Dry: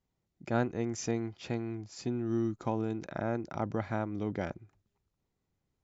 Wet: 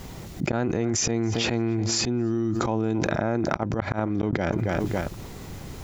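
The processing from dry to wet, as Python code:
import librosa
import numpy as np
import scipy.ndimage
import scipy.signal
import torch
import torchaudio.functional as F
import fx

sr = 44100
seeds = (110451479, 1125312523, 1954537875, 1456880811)

y = fx.echo_feedback(x, sr, ms=279, feedback_pct=20, wet_db=-22.5)
y = fx.auto_swell(y, sr, attack_ms=121.0)
y = fx.gate_flip(y, sr, shuts_db=-26.0, range_db=-33, at=(3.47, 4.33))
y = fx.env_flatten(y, sr, amount_pct=100)
y = F.gain(torch.from_numpy(y), 3.5).numpy()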